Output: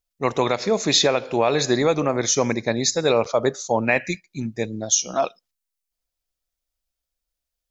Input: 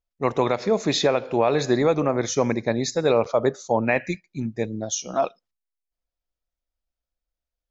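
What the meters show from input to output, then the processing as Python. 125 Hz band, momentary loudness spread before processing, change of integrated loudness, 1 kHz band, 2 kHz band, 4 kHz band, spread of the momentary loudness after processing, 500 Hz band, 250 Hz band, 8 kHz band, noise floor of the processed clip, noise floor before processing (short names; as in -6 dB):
0.0 dB, 8 LU, +2.0 dB, +1.0 dB, +3.5 dB, +7.0 dB, 10 LU, +0.5 dB, 0.0 dB, n/a, -84 dBFS, under -85 dBFS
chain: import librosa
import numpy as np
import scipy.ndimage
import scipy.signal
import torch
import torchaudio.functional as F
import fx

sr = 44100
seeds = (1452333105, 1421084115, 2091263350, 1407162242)

y = fx.high_shelf(x, sr, hz=2800.0, db=10.5)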